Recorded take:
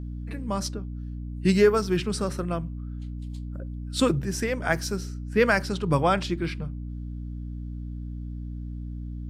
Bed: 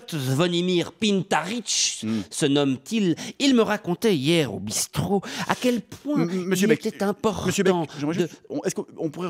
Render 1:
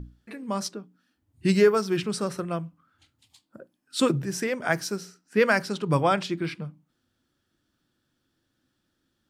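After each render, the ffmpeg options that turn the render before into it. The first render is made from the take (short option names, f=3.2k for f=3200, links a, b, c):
-af "bandreject=f=60:t=h:w=6,bandreject=f=120:t=h:w=6,bandreject=f=180:t=h:w=6,bandreject=f=240:t=h:w=6,bandreject=f=300:t=h:w=6"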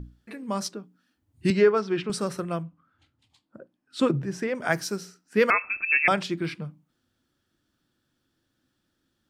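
-filter_complex "[0:a]asettb=1/sr,asplit=3[a][b][c];[a]atrim=end=1.504[d];[b]atrim=start=1.5:end=2.1,asetpts=PTS-STARTPTS,afade=t=in:d=0.004:c=qsin,afade=t=out:st=0.596:d=0.004:c=qsin,highpass=190,lowpass=3.5k[e];[c]atrim=start=2.096[f];[d][e]acrossfade=d=0.004:c1=hsin:c2=qsin[g];[g][f]acrossfade=d=0.004:c1=qsin:c2=hsin,asettb=1/sr,asplit=3[h][i][j];[h]atrim=end=2.634[k];[i]atrim=start=2.63:end=4.55,asetpts=PTS-STARTPTS,afade=t=in:d=0.004:c=qsin,afade=t=out:st=1.916:d=0.004:c=qsin,aemphasis=mode=reproduction:type=75kf[l];[j]atrim=start=4.546[m];[k][l]acrossfade=d=0.004:c1=hsin:c2=qsin[n];[n][m]acrossfade=d=0.004:c1=qsin:c2=hsin,asettb=1/sr,asplit=3[o][p][q];[o]atrim=end=5.504[r];[p]atrim=start=5.5:end=6.08,asetpts=PTS-STARTPTS,afade=t=in:d=0.004:c=qsin,afade=t=out:st=0.576:d=0.004:c=qsin,lowpass=f=2.4k:t=q:w=0.5098,lowpass=f=2.4k:t=q:w=0.6013,lowpass=f=2.4k:t=q:w=0.9,lowpass=f=2.4k:t=q:w=2.563,afreqshift=-2800[s];[q]atrim=start=6.076[t];[r][s]acrossfade=d=0.004:c1=hsin:c2=qsin[u];[u][t]acrossfade=d=0.004:c1=qsin:c2=hsin"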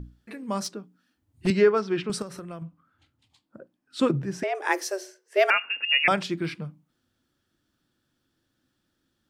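-filter_complex "[0:a]asettb=1/sr,asplit=3[a][b][c];[a]atrim=end=0.644[d];[b]atrim=start=0.64:end=1.47,asetpts=PTS-STARTPTS,afade=t=in:d=0.004:c=qsin,afade=t=out:st=0.826:d=0.004:c=qsin,asoftclip=type=hard:threshold=-25dB[e];[c]atrim=start=1.466[f];[d][e]acrossfade=d=0.004:c1=hsin:c2=qsin[g];[g][f]acrossfade=d=0.004:c1=qsin:c2=hsin,asettb=1/sr,asplit=3[h][i][j];[h]atrim=end=2.224[k];[i]atrim=start=2.22:end=2.62,asetpts=PTS-STARTPTS,afade=t=in:d=0.004:c=qsin,afade=t=out:st=0.396:d=0.004:c=qsin,acompressor=threshold=-36dB:ratio=4:attack=3.2:release=140:knee=1:detection=peak[l];[j]atrim=start=2.616[m];[k][l]acrossfade=d=0.004:c1=hsin:c2=qsin[n];[n][m]acrossfade=d=0.004:c1=qsin:c2=hsin,asettb=1/sr,asplit=3[o][p][q];[o]atrim=end=4.434[r];[p]atrim=start=4.43:end=6.04,asetpts=PTS-STARTPTS,afade=t=in:d=0.004:c=qsin,afade=t=out:st=1.606:d=0.004:c=qsin,afreqshift=190[s];[q]atrim=start=6.036[t];[r][s]acrossfade=d=0.004:c1=hsin:c2=qsin[u];[u][t]acrossfade=d=0.004:c1=qsin:c2=hsin"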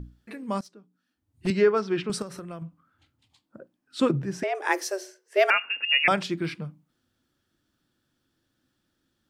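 -filter_complex "[0:a]asplit=2[a][b];[a]atrim=end=0.61,asetpts=PTS-STARTPTS,afade=t=out:st=0.606:d=0.004:c=hsin:silence=0.1[c];[b]atrim=start=0.61,asetpts=PTS-STARTPTS,afade=t=in:d=1.23:silence=0.1[d];[c][d]concat=n=2:v=0:a=1"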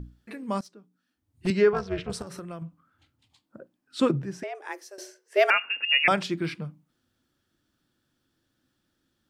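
-filter_complex "[0:a]asettb=1/sr,asplit=3[a][b][c];[a]atrim=end=1.734[d];[b]atrim=start=1.73:end=2.27,asetpts=PTS-STARTPTS,afade=t=in:d=0.004:c=qsin,afade=t=out:st=0.536:d=0.004:c=qsin,tremolo=f=280:d=0.919[e];[c]atrim=start=2.266[f];[d][e]acrossfade=d=0.004:c1=hsin:c2=qsin[g];[g][f]acrossfade=d=0.004:c1=qsin:c2=hsin,asplit=2[h][i];[h]atrim=end=4.98,asetpts=PTS-STARTPTS,afade=t=out:st=4.09:d=0.89:c=qua:silence=0.16788[j];[i]atrim=start=4.98,asetpts=PTS-STARTPTS,afade=t=in:d=0.004:c=hsin:silence=0.16788[k];[j][k]concat=n=2:v=0:a=1"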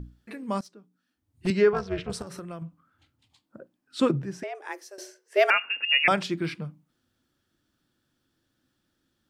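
-af anull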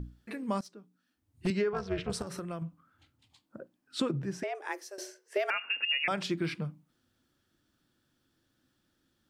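-af "alimiter=limit=-15.5dB:level=0:latency=1:release=199,acompressor=threshold=-28dB:ratio=3"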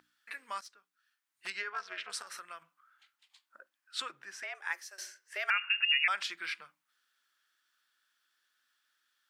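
-af "highpass=f=1.5k:t=q:w=1.6"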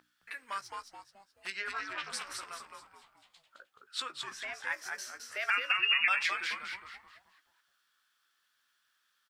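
-filter_complex "[0:a]asplit=2[a][b];[b]adelay=16,volume=-11dB[c];[a][c]amix=inputs=2:normalize=0,asplit=2[d][e];[e]asplit=5[f][g][h][i][j];[f]adelay=214,afreqshift=-130,volume=-4.5dB[k];[g]adelay=428,afreqshift=-260,volume=-12.9dB[l];[h]adelay=642,afreqshift=-390,volume=-21.3dB[m];[i]adelay=856,afreqshift=-520,volume=-29.7dB[n];[j]adelay=1070,afreqshift=-650,volume=-38.1dB[o];[k][l][m][n][o]amix=inputs=5:normalize=0[p];[d][p]amix=inputs=2:normalize=0"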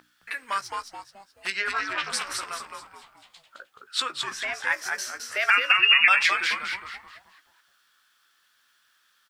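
-af "volume=10dB"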